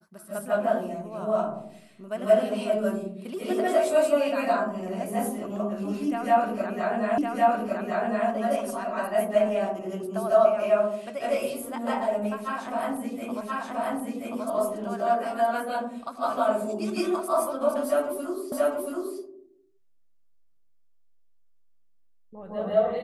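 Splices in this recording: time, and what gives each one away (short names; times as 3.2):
7.18 repeat of the last 1.11 s
13.41 repeat of the last 1.03 s
18.52 repeat of the last 0.68 s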